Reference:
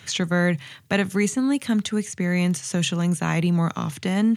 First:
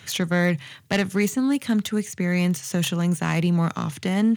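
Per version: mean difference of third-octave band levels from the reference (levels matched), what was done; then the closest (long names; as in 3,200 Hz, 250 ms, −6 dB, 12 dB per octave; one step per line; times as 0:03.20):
1.5 dB: phase distortion by the signal itself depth 0.13 ms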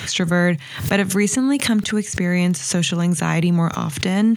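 2.5 dB: background raised ahead of every attack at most 88 dB per second
level +3.5 dB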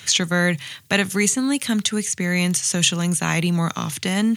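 4.0 dB: high-shelf EQ 2,200 Hz +11.5 dB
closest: first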